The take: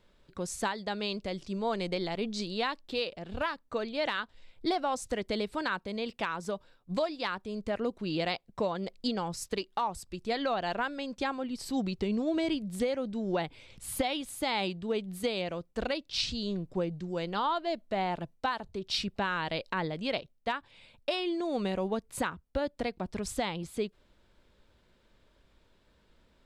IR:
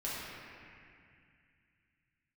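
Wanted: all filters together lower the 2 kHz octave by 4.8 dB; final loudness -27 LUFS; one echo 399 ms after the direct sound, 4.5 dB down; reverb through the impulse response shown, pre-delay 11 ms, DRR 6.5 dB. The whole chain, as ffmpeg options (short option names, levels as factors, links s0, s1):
-filter_complex "[0:a]equalizer=f=2000:t=o:g=-6.5,aecho=1:1:399:0.596,asplit=2[s0][s1];[1:a]atrim=start_sample=2205,adelay=11[s2];[s1][s2]afir=irnorm=-1:irlink=0,volume=0.282[s3];[s0][s3]amix=inputs=2:normalize=0,volume=1.88"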